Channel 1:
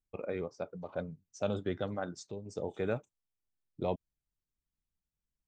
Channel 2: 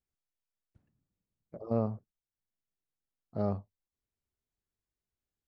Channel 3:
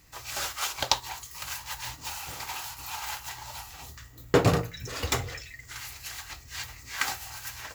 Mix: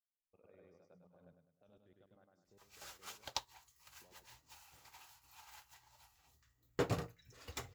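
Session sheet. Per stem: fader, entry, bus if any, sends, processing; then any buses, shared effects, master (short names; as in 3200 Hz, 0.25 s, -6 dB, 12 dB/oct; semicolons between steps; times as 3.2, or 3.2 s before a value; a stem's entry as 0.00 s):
1.03 s -16.5 dB -> 1.65 s -24 dB, 0.20 s, bus A, no send, echo send -9 dB, low-pass opened by the level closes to 1500 Hz, open at -34.5 dBFS; compressor 3:1, threshold -37 dBFS, peak gain reduction 8 dB
off
-13.5 dB, 2.45 s, no bus, no send, no echo send, upward expander 1.5:1, over -43 dBFS
bus A: 0.0 dB, level quantiser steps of 22 dB; limiter -58 dBFS, peak gain reduction 4.5 dB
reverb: off
echo: feedback echo 0.102 s, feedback 41%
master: dry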